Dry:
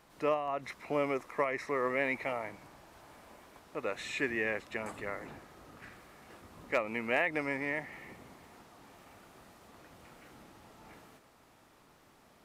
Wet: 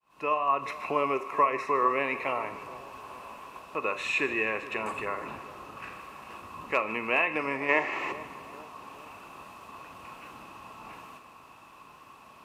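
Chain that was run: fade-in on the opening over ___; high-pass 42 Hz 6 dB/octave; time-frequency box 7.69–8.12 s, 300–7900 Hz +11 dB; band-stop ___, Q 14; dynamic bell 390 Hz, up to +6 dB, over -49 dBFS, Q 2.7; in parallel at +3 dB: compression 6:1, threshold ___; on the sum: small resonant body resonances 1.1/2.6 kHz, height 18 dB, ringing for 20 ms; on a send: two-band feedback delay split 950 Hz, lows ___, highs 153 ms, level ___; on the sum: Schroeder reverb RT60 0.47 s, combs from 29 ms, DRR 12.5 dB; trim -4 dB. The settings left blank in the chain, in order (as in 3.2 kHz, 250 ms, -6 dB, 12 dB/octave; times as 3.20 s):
0.50 s, 1.2 kHz, -39 dBFS, 425 ms, -15.5 dB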